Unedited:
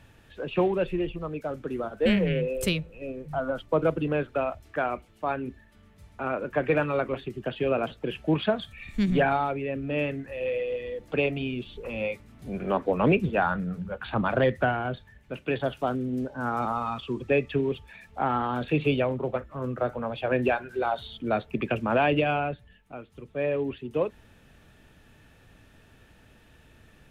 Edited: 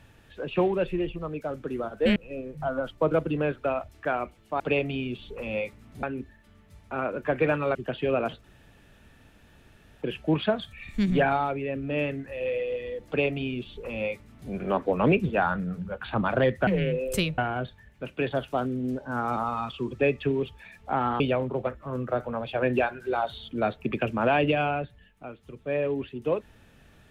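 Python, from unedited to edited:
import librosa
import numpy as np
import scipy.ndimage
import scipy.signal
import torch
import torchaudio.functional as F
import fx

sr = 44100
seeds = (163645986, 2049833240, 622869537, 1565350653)

y = fx.edit(x, sr, fx.move(start_s=2.16, length_s=0.71, to_s=14.67),
    fx.cut(start_s=7.03, length_s=0.3),
    fx.insert_room_tone(at_s=8.02, length_s=1.58),
    fx.duplicate(start_s=11.07, length_s=1.43, to_s=5.31),
    fx.cut(start_s=18.49, length_s=0.4), tone=tone)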